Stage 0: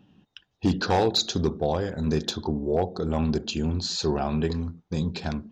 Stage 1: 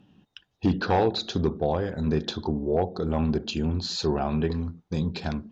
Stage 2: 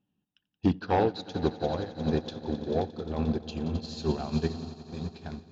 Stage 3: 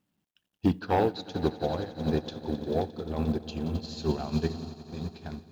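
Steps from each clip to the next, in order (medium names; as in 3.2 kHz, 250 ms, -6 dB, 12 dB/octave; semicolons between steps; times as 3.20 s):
low-pass that closes with the level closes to 2.9 kHz, closed at -21 dBFS
echo with a slow build-up 88 ms, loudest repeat 5, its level -14 dB; upward expansion 2.5:1, over -33 dBFS
companded quantiser 8-bit; on a send at -23 dB: reverberation RT60 0.40 s, pre-delay 3 ms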